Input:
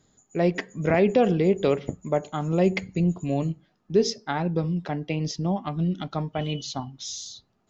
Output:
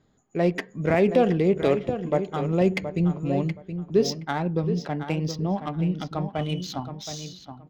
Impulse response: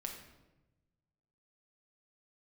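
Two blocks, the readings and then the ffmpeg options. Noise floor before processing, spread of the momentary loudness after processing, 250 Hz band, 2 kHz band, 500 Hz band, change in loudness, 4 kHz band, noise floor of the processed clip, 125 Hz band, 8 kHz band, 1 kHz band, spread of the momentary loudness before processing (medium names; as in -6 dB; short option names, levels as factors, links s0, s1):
-69 dBFS, 13 LU, +0.5 dB, 0.0 dB, +0.5 dB, +0.5 dB, -1.0 dB, -54 dBFS, +0.5 dB, no reading, +0.5 dB, 13 LU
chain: -filter_complex "[0:a]adynamicsmooth=sensitivity=6.5:basefreq=3700,asplit=2[s0][s1];[s1]adelay=722,lowpass=f=4400:p=1,volume=0.335,asplit=2[s2][s3];[s3]adelay=722,lowpass=f=4400:p=1,volume=0.19,asplit=2[s4][s5];[s5]adelay=722,lowpass=f=4400:p=1,volume=0.19[s6];[s0][s2][s4][s6]amix=inputs=4:normalize=0"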